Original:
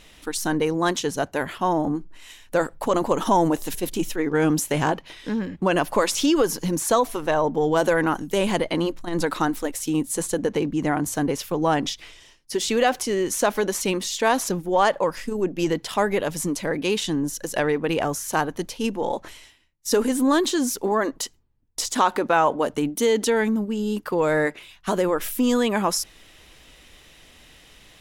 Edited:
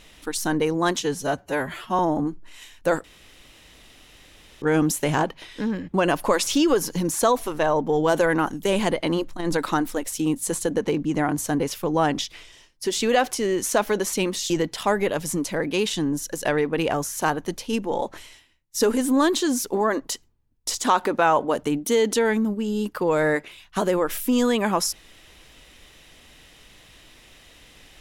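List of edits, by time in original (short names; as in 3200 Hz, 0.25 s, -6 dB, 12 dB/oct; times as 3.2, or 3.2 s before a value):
1.03–1.67 stretch 1.5×
2.72–4.3 room tone
14.18–15.61 cut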